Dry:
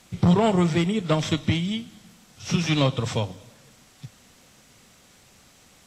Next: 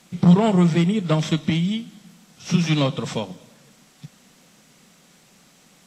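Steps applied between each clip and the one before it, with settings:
low shelf with overshoot 130 Hz −7 dB, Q 3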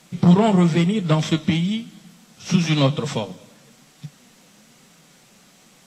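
flanger 1 Hz, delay 6.1 ms, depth 4.3 ms, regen +63%
level +6 dB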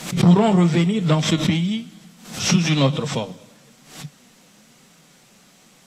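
background raised ahead of every attack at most 98 dB per second

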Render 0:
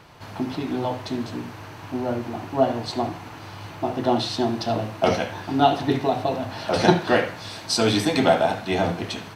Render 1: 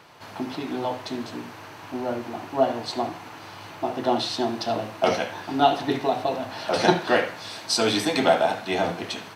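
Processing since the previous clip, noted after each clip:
high-pass filter 310 Hz 6 dB per octave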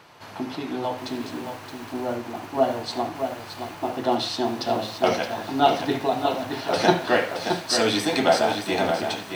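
feedback echo at a low word length 621 ms, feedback 35%, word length 7 bits, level −6.5 dB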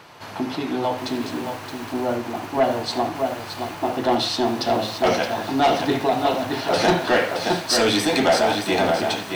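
soft clipping −16.5 dBFS, distortion −12 dB
level +5 dB

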